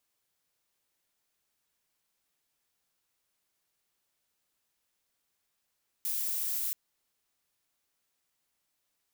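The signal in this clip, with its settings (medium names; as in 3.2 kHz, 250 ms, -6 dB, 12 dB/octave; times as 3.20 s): noise violet, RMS -32.5 dBFS 0.68 s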